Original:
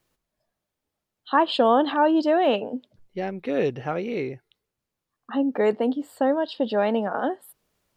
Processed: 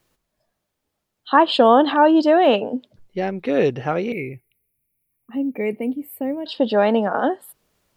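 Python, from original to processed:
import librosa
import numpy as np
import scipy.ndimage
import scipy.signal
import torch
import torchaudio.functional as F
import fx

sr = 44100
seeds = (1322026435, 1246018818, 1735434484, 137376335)

y = fx.curve_eq(x, sr, hz=(110.0, 380.0, 1600.0, 2300.0, 3400.0, 7200.0, 11000.0), db=(0, -7, -24, 5, -23, -17, 13), at=(4.12, 6.46))
y = F.gain(torch.from_numpy(y), 5.5).numpy()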